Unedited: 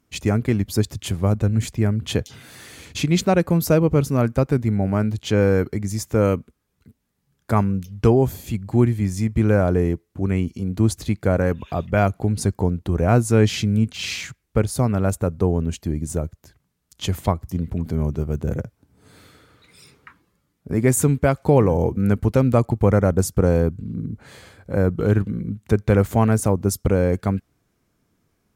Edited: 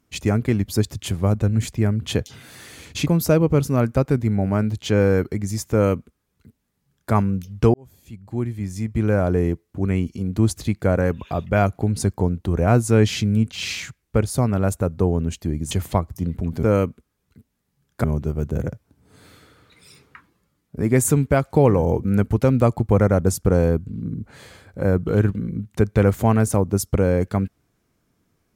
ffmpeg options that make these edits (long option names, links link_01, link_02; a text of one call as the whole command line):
ffmpeg -i in.wav -filter_complex "[0:a]asplit=6[link_01][link_02][link_03][link_04][link_05][link_06];[link_01]atrim=end=3.072[link_07];[link_02]atrim=start=3.478:end=8.15,asetpts=PTS-STARTPTS,afade=type=out:start_time=4.668:duration=0.004:curve=hsin[link_08];[link_03]atrim=start=8.15:end=16.122,asetpts=PTS-STARTPTS,afade=type=in:duration=1.75[link_09];[link_04]atrim=start=17.038:end=17.962[link_10];[link_05]atrim=start=6.128:end=7.542[link_11];[link_06]atrim=start=17.958[link_12];[link_08][link_09]concat=n=2:v=0:a=1[link_13];[link_07][link_13]acrossfade=duration=0.004:curve1=hsin:curve2=hsin[link_14];[link_14][link_10]acrossfade=duration=0.004:curve1=hsin:curve2=hsin[link_15];[link_15][link_11]acrossfade=duration=0.004:curve1=hsin:curve2=hsin[link_16];[link_16][link_12]acrossfade=duration=0.004:curve1=hsin:curve2=hsin" out.wav